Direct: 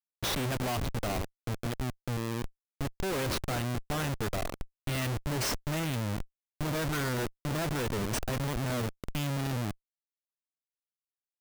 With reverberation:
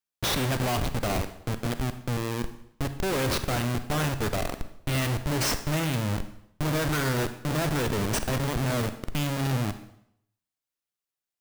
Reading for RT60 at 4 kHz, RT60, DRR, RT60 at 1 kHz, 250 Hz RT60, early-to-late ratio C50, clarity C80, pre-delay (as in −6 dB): 0.65 s, 0.70 s, 10.0 dB, 0.70 s, 0.70 s, 11.0 dB, 14.0 dB, 29 ms